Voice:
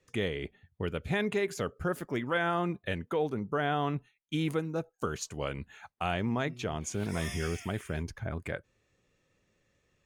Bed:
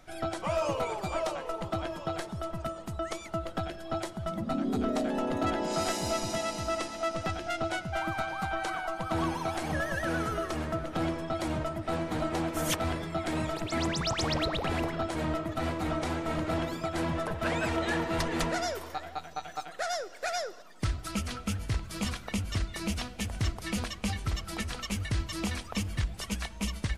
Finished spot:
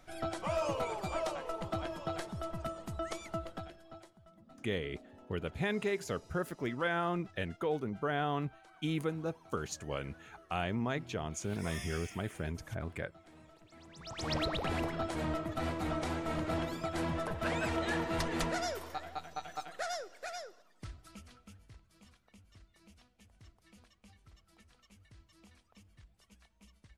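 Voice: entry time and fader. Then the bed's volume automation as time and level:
4.50 s, -3.5 dB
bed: 3.33 s -4 dB
4.28 s -26.5 dB
13.87 s -26.5 dB
14.33 s -4 dB
19.76 s -4 dB
22.02 s -28.5 dB

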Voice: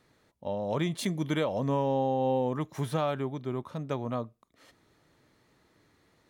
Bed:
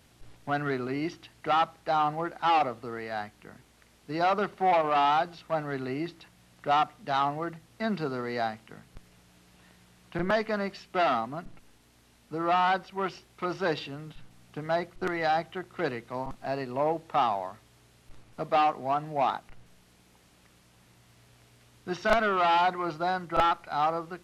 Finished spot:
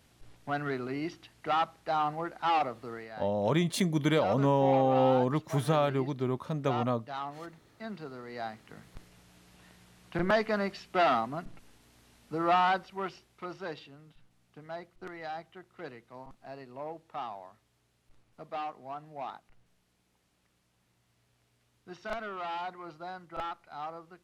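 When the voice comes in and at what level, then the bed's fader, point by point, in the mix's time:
2.75 s, +2.5 dB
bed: 2.93 s -3.5 dB
3.15 s -11 dB
8.26 s -11 dB
8.86 s 0 dB
12.52 s 0 dB
13.91 s -13 dB

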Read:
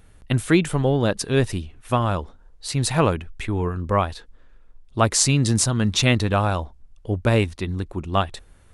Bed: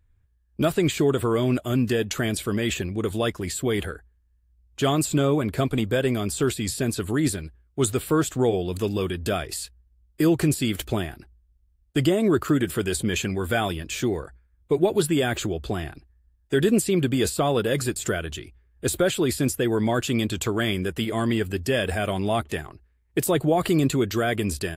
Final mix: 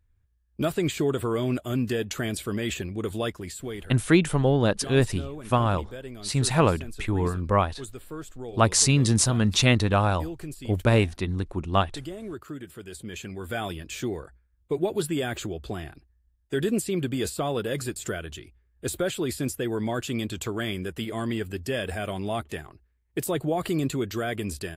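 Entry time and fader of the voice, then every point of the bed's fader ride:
3.60 s, -1.5 dB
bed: 3.24 s -4 dB
4.11 s -16.5 dB
12.79 s -16.5 dB
13.71 s -5.5 dB

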